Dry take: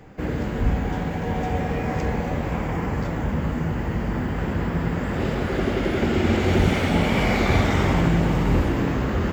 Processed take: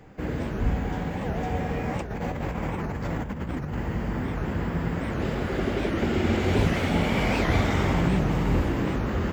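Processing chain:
0:01.97–0:03.79: compressor whose output falls as the input rises −26 dBFS, ratio −0.5
wow of a warped record 78 rpm, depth 250 cents
level −3.5 dB

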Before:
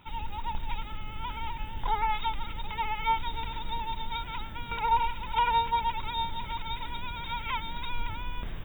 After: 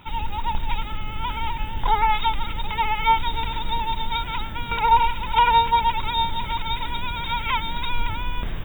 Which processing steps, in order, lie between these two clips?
dynamic equaliser 9,600 Hz, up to +5 dB, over −55 dBFS, Q 0.75
level +8.5 dB

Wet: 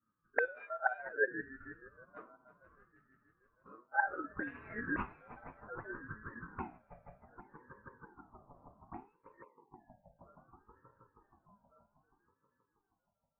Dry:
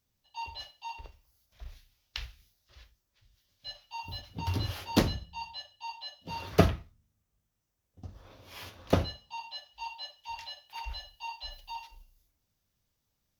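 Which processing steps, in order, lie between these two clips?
pitch shifter swept by a sawtooth +5.5 semitones, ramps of 1,432 ms
low-pass filter sweep 1,100 Hz → 240 Hz, 0:03.60–0:07.19
echo machine with several playback heads 159 ms, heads second and third, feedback 63%, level −13 dB
dynamic equaliser 1,600 Hz, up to +7 dB, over −55 dBFS, Q 1.9
convolution reverb RT60 0.15 s, pre-delay 3 ms, DRR −6.5 dB
time-frequency box erased 0:09.44–0:10.19, 540–1,200 Hz
envelope filter 530–2,000 Hz, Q 8.5, up, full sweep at −12 dBFS
ring modulator whose carrier an LFO sweeps 550 Hz, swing 35%, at 0.64 Hz
level −3 dB

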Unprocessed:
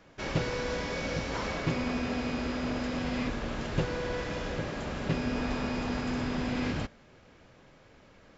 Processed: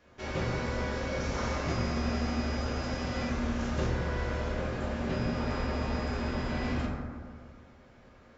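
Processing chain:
0:01.20–0:03.89: parametric band 6,100 Hz +7.5 dB 0.57 octaves
convolution reverb RT60 1.9 s, pre-delay 6 ms, DRR −5 dB
level −6.5 dB

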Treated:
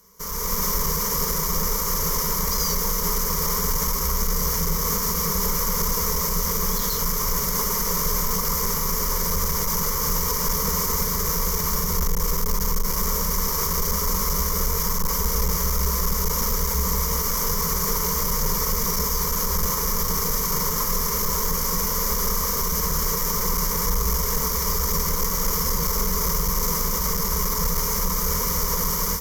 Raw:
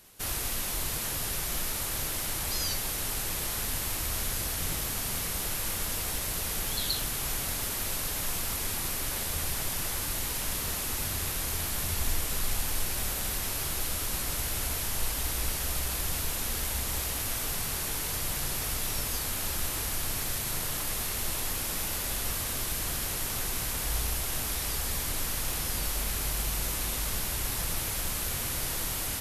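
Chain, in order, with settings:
each half-wave held at its own peak
EQ curve with evenly spaced ripples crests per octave 0.78, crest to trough 14 dB
automatic gain control gain up to 11.5 dB
phaser with its sweep stopped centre 520 Hz, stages 8
brickwall limiter −10.5 dBFS, peak gain reduction 6.5 dB
level −2.5 dB

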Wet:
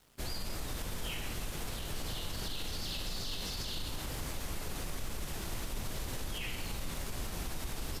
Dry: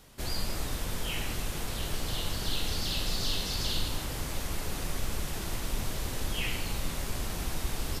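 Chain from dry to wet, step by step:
dead-zone distortion −56 dBFS
brickwall limiter −26.5 dBFS, peak gain reduction 8.5 dB
level −2 dB

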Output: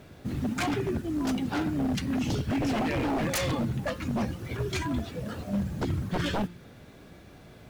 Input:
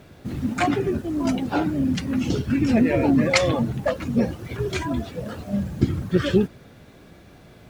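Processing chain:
hum removal 175.5 Hz, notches 28
dynamic equaliser 590 Hz, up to −8 dB, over −36 dBFS, Q 0.99
wave folding −20.5 dBFS
level −2 dB

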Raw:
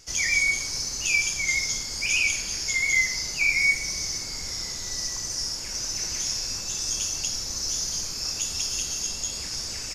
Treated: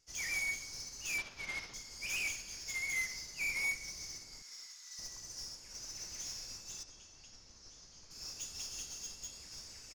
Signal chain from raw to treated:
0:01.18–0:01.74: variable-slope delta modulation 32 kbit/s
0:04.42–0:04.99: high-pass filter 1,100 Hz 24 dB per octave
soft clipping −25.5 dBFS, distortion −9 dB
0:06.83–0:08.11: high-frequency loss of the air 100 metres
far-end echo of a speakerphone 240 ms, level −10 dB
expander for the loud parts 2.5 to 1, over −37 dBFS
level −5.5 dB

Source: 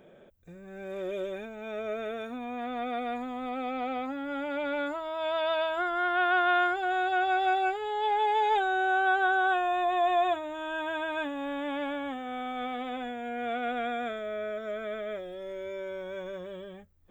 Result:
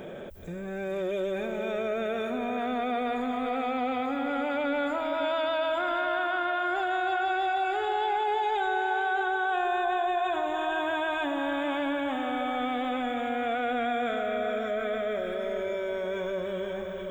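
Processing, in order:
brickwall limiter −23.5 dBFS, peak gain reduction 9 dB
on a send: feedback delay with all-pass diffusion 478 ms, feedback 42%, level −6.5 dB
on the sum: envelope flattener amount 50%

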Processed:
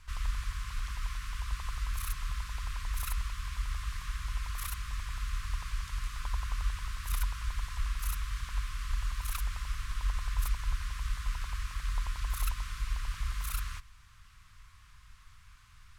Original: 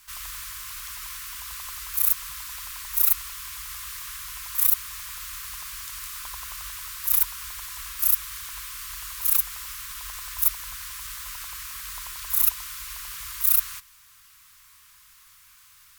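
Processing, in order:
low-pass filter 11,000 Hz 12 dB per octave
RIAA equalisation playback
level −1 dB

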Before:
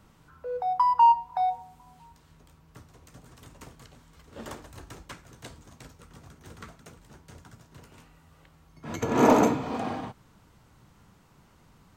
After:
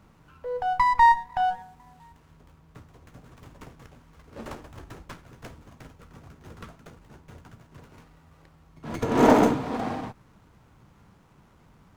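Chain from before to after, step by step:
windowed peak hold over 9 samples
level +2 dB

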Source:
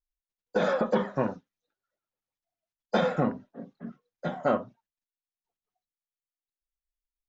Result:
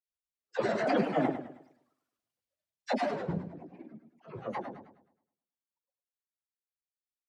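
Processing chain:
spectral magnitudes quantised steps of 15 dB
source passing by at 0:01.82, 6 m/s, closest 2.4 metres
high-pass filter 60 Hz
parametric band 950 Hz −8.5 dB 0.38 octaves
granular cloud, grains 20 per second, pitch spread up and down by 7 semitones
all-pass dispersion lows, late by 63 ms, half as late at 670 Hz
feedback echo with a swinging delay time 105 ms, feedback 39%, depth 115 cents, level −9.5 dB
level +7.5 dB

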